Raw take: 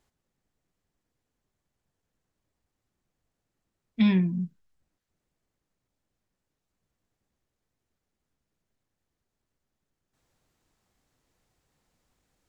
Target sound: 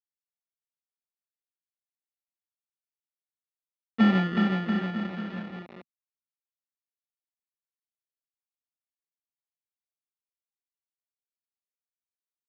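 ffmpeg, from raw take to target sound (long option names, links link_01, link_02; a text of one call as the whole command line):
ffmpeg -i in.wav -af "acrusher=samples=28:mix=1:aa=0.000001,aeval=exprs='0.211*(cos(1*acos(clip(val(0)/0.211,-1,1)))-cos(1*PI/2))+0.0299*(cos(8*acos(clip(val(0)/0.211,-1,1)))-cos(8*PI/2))':channel_layout=same,aecho=1:1:370|684.5|951.8|1179|1372:0.631|0.398|0.251|0.158|0.1,acrusher=bits=6:mix=0:aa=0.000001,highpass=140,equalizer=frequency=160:width_type=q:width=4:gain=-4,equalizer=frequency=230:width_type=q:width=4:gain=4,equalizer=frequency=1000:width_type=q:width=4:gain=-4,equalizer=frequency=1600:width_type=q:width=4:gain=8,lowpass=frequency=3500:width=0.5412,lowpass=frequency=3500:width=1.3066" out.wav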